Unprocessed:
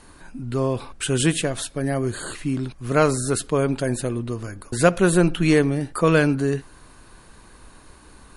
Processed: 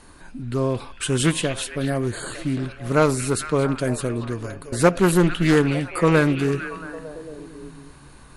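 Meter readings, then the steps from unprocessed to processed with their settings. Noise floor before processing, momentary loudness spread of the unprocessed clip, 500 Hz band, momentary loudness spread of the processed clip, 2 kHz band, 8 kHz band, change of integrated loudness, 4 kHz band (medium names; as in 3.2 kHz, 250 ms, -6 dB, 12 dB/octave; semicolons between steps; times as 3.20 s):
-49 dBFS, 11 LU, 0.0 dB, 19 LU, +0.5 dB, -1.0 dB, 0.0 dB, +0.5 dB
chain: repeats whose band climbs or falls 226 ms, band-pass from 2.9 kHz, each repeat -0.7 oct, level -5.5 dB; loudspeaker Doppler distortion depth 0.22 ms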